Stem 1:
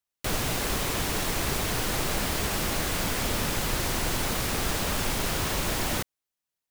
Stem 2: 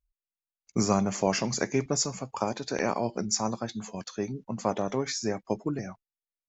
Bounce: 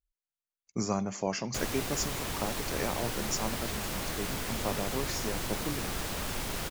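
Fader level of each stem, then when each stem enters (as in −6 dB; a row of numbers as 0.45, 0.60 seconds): −7.0, −6.0 decibels; 1.30, 0.00 seconds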